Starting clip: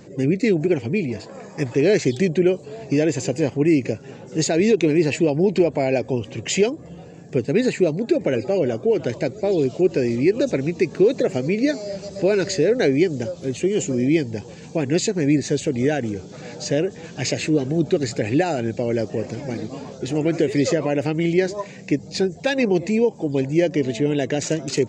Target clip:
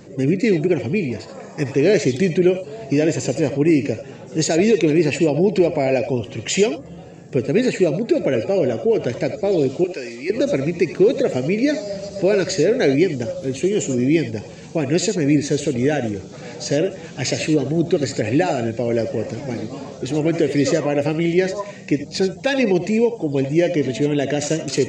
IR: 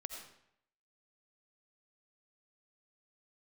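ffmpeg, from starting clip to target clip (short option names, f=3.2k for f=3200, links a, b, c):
-filter_complex "[0:a]asettb=1/sr,asplit=3[a][b][c];[a]atrim=end=9.844[d];[b]atrim=start=9.84:end=10.3,asetpts=PTS-STARTPTS,afade=t=in:d=0.004:c=qsin,afade=t=out:st=0.456:d=0.004:c=qsin,highpass=f=1.4k:p=1[e];[c]atrim=start=10.296[f];[d][e]acrossfade=d=0.004:c1=hsin:c2=qsin[g];[g][f]acrossfade=d=0.004:c1=qsin:c2=hsin[h];[1:a]atrim=start_sample=2205,atrim=end_sample=3969[i];[h][i]afir=irnorm=-1:irlink=0,volume=5.5dB"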